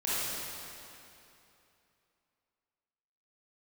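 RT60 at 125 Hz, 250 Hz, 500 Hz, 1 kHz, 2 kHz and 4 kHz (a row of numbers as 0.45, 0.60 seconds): 2.9, 2.9, 2.9, 2.8, 2.7, 2.4 seconds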